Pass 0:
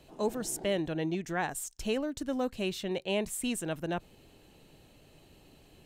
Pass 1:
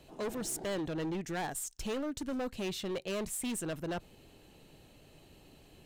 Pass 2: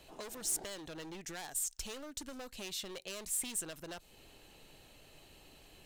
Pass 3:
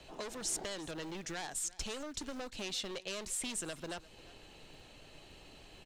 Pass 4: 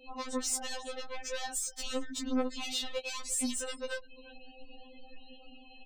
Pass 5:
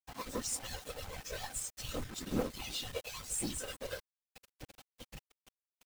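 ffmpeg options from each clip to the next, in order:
-af "volume=32.5dB,asoftclip=hard,volume=-32.5dB"
-filter_complex "[0:a]equalizer=f=160:w=0.32:g=-9.5,acrossover=split=4000[a][b];[a]acompressor=threshold=-48dB:ratio=6[c];[c][b]amix=inputs=2:normalize=0,volume=3.5dB"
-filter_complex "[0:a]lowpass=6.9k,acrossover=split=220|1600|3700[a][b][c][d];[a]acrusher=bits=2:mode=log:mix=0:aa=0.000001[e];[e][b][c][d]amix=inputs=4:normalize=0,aecho=1:1:347:0.1,volume=3.5dB"
-af "afftfilt=real='re*gte(hypot(re,im),0.00282)':imag='im*gte(hypot(re,im),0.00282)':win_size=1024:overlap=0.75,asoftclip=type=tanh:threshold=-32dB,afftfilt=real='re*3.46*eq(mod(b,12),0)':imag='im*3.46*eq(mod(b,12),0)':win_size=2048:overlap=0.75,volume=8dB"
-af "acrusher=bits=6:mix=0:aa=0.000001,afftfilt=real='hypot(re,im)*cos(2*PI*random(0))':imag='hypot(re,im)*sin(2*PI*random(1))':win_size=512:overlap=0.75,aeval=exprs='sgn(val(0))*max(abs(val(0))-0.00237,0)':c=same,volume=3dB"

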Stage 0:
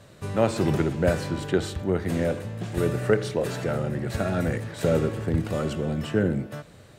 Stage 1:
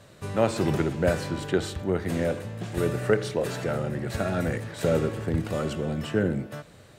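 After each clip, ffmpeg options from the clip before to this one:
-af "lowshelf=f=360:g=-2.5"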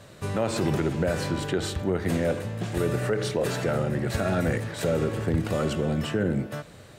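-af "alimiter=limit=-19dB:level=0:latency=1:release=79,volume=3.5dB"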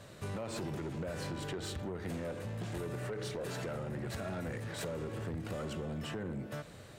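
-af "acompressor=threshold=-29dB:ratio=6,asoftclip=type=tanh:threshold=-29dB,volume=-4dB"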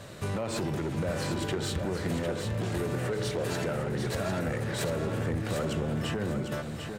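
-af "aecho=1:1:750|1500|2250|3000:0.473|0.142|0.0426|0.0128,volume=7.5dB"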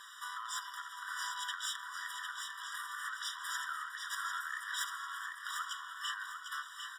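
-af "afftfilt=real='re*eq(mod(floor(b*sr/1024/970),2),1)':imag='im*eq(mod(floor(b*sr/1024/970),2),1)':win_size=1024:overlap=0.75,volume=1.5dB"

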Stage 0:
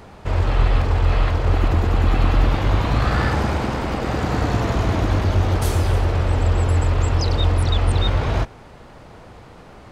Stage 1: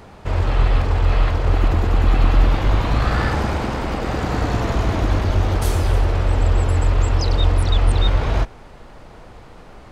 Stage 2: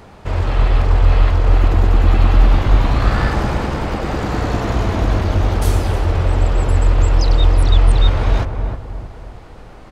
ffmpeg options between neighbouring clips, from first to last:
-af "asubboost=boost=2.5:cutoff=51"
-filter_complex "[0:a]asplit=2[a][b];[b]adelay=315,lowpass=f=1k:p=1,volume=-5dB,asplit=2[c][d];[d]adelay=315,lowpass=f=1k:p=1,volume=0.44,asplit=2[e][f];[f]adelay=315,lowpass=f=1k:p=1,volume=0.44,asplit=2[g][h];[h]adelay=315,lowpass=f=1k:p=1,volume=0.44,asplit=2[i][j];[j]adelay=315,lowpass=f=1k:p=1,volume=0.44[k];[a][c][e][g][i][k]amix=inputs=6:normalize=0,volume=1dB"

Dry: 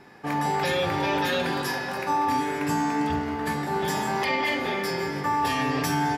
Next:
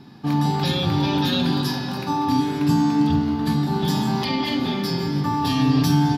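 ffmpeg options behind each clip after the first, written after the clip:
-af "equalizer=f=125:t=o:w=1:g=9,equalizer=f=250:t=o:w=1:g=9,equalizer=f=500:t=o:w=1:g=-10,equalizer=f=2k:t=o:w=1:g=-12,equalizer=f=4k:t=o:w=1:g=10,equalizer=f=8k:t=o:w=1:g=-8,volume=3dB"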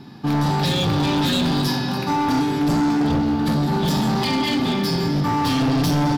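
-af "asoftclip=type=hard:threshold=-20.5dB,volume=4dB"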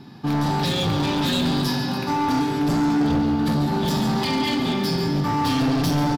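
-af "aecho=1:1:141:0.266,volume=-2dB"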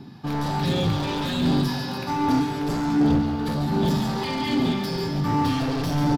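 -filter_complex "[0:a]acrossover=split=790|2800[a][b][c];[a]aphaser=in_gain=1:out_gain=1:delay=2.2:decay=0.43:speed=1.3:type=sinusoidal[d];[c]alimiter=level_in=1.5dB:limit=-24dB:level=0:latency=1,volume=-1.5dB[e];[d][b][e]amix=inputs=3:normalize=0,volume=-3dB"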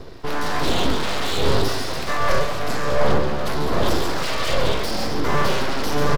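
-af "aeval=exprs='abs(val(0))':c=same,volume=6dB"

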